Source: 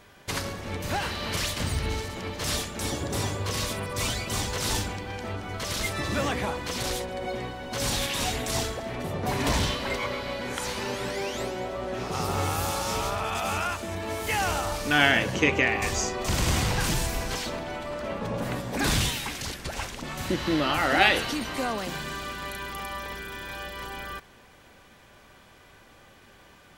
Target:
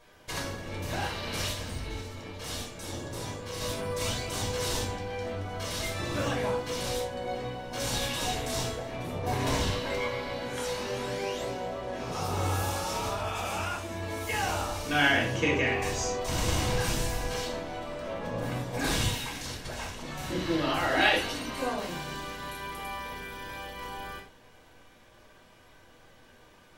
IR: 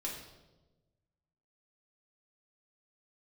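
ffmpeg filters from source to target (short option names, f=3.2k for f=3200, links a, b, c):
-filter_complex "[0:a]asplit=3[a][b][c];[a]afade=t=out:st=1.55:d=0.02[d];[b]flanger=delay=3.7:depth=5.1:regen=-66:speed=1.2:shape=triangular,afade=t=in:st=1.55:d=0.02,afade=t=out:st=3.6:d=0.02[e];[c]afade=t=in:st=3.6:d=0.02[f];[d][e][f]amix=inputs=3:normalize=0[g];[1:a]atrim=start_sample=2205,afade=t=out:st=0.22:d=0.01,atrim=end_sample=10143,asetrate=70560,aresample=44100[h];[g][h]afir=irnorm=-1:irlink=0"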